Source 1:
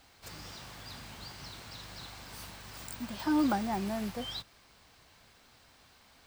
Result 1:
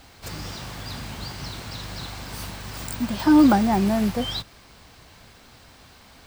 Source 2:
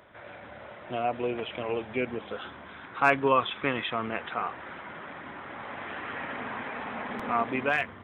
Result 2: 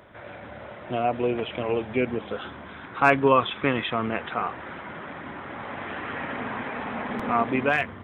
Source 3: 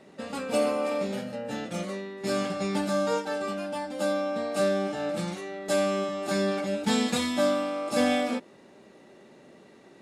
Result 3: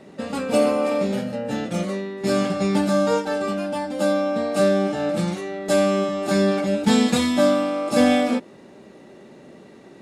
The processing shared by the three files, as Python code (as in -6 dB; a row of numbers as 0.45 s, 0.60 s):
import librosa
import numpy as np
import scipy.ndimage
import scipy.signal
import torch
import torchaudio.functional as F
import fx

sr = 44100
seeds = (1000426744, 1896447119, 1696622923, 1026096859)

y = fx.low_shelf(x, sr, hz=440.0, db=5.5)
y = librosa.util.normalize(y) * 10.0 ** (-6 / 20.0)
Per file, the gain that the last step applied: +9.5 dB, +2.5 dB, +4.5 dB